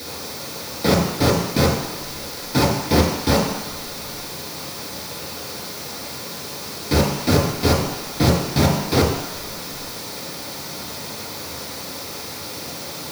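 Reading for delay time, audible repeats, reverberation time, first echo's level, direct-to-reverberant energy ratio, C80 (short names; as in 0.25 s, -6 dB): none, none, 1.1 s, none, -5.5 dB, 5.5 dB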